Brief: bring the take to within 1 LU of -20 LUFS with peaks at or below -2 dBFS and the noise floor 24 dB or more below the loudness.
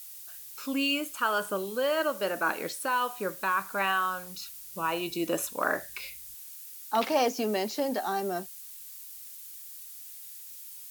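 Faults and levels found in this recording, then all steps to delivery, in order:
noise floor -45 dBFS; noise floor target -54 dBFS; loudness -30.0 LUFS; peak -13.0 dBFS; loudness target -20.0 LUFS
-> noise print and reduce 9 dB; gain +10 dB

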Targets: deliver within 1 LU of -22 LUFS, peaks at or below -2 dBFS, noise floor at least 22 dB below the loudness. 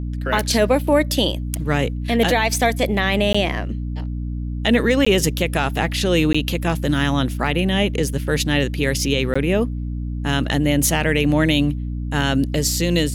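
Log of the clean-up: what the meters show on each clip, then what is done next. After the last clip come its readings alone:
dropouts 4; longest dropout 15 ms; hum 60 Hz; harmonics up to 300 Hz; hum level -23 dBFS; loudness -19.5 LUFS; peak -5.0 dBFS; loudness target -22.0 LUFS
-> interpolate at 3.33/5.05/6.33/9.34, 15 ms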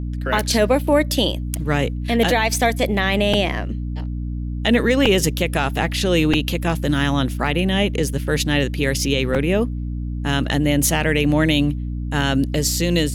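dropouts 0; hum 60 Hz; harmonics up to 300 Hz; hum level -23 dBFS
-> notches 60/120/180/240/300 Hz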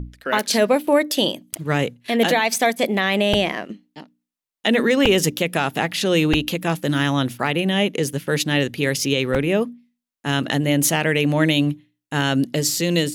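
hum none; loudness -20.0 LUFS; peak -5.0 dBFS; loudness target -22.0 LUFS
-> gain -2 dB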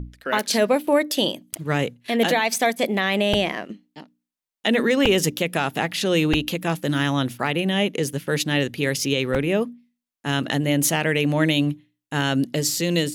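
loudness -22.0 LUFS; peak -7.0 dBFS; noise floor -87 dBFS

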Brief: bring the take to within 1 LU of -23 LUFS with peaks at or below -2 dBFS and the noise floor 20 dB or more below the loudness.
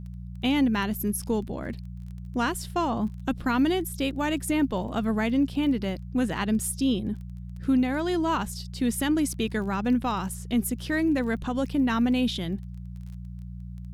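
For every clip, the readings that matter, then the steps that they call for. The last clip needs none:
ticks 21/s; hum 60 Hz; harmonics up to 180 Hz; hum level -36 dBFS; loudness -27.0 LUFS; peak -14.0 dBFS; loudness target -23.0 LUFS
-> de-click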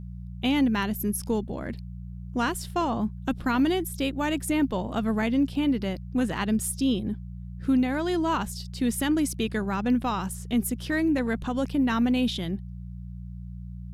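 ticks 0/s; hum 60 Hz; harmonics up to 180 Hz; hum level -36 dBFS
-> de-hum 60 Hz, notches 3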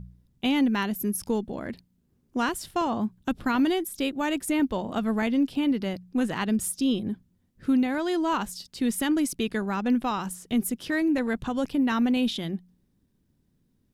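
hum none; loudness -27.0 LUFS; peak -14.5 dBFS; loudness target -23.0 LUFS
-> gain +4 dB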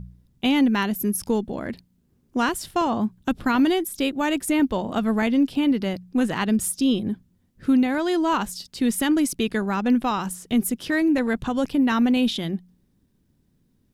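loudness -23.0 LUFS; peak -10.5 dBFS; noise floor -66 dBFS

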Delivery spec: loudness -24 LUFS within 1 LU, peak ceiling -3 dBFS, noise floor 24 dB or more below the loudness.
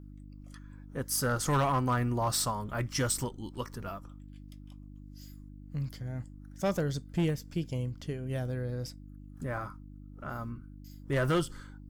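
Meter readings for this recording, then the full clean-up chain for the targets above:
clipped 0.8%; flat tops at -22.5 dBFS; hum 50 Hz; harmonics up to 300 Hz; hum level -46 dBFS; loudness -33.0 LUFS; peak -22.5 dBFS; loudness target -24.0 LUFS
-> clip repair -22.5 dBFS; de-hum 50 Hz, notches 6; gain +9 dB

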